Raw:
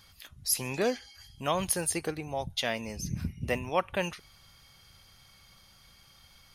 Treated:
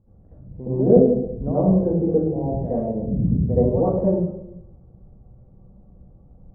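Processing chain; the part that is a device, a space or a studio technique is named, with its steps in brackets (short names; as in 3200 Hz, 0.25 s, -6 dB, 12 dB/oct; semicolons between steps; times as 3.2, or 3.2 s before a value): next room (LPF 520 Hz 24 dB/oct; reverb RT60 0.80 s, pre-delay 64 ms, DRR -11 dB); 0.96–1.52 low shelf 230 Hz +10.5 dB; gain +3.5 dB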